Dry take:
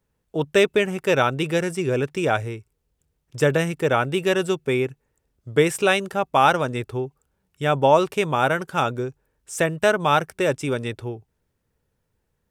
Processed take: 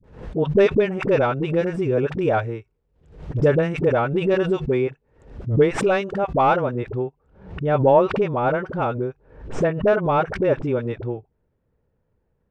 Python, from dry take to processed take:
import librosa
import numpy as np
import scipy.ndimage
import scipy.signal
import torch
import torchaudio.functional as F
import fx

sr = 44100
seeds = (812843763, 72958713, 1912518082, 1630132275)

y = fx.tracing_dist(x, sr, depth_ms=0.033)
y = fx.peak_eq(y, sr, hz=520.0, db=3.5, octaves=1.0)
y = fx.rider(y, sr, range_db=4, speed_s=2.0)
y = fx.spacing_loss(y, sr, db_at_10k=fx.steps((0.0, 31.0), (6.48, 43.0)))
y = fx.dispersion(y, sr, late='highs', ms=43.0, hz=520.0)
y = fx.pre_swell(y, sr, db_per_s=100.0)